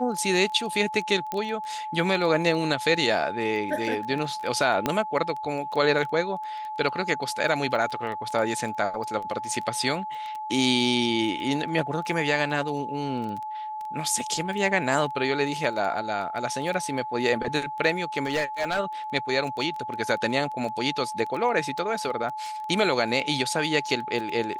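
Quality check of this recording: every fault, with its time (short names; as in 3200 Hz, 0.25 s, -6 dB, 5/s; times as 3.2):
crackle 11/s -31 dBFS
tone 860 Hz -31 dBFS
1.32 pop -15 dBFS
4.86 pop -9 dBFS
18.25–18.8 clipped -20.5 dBFS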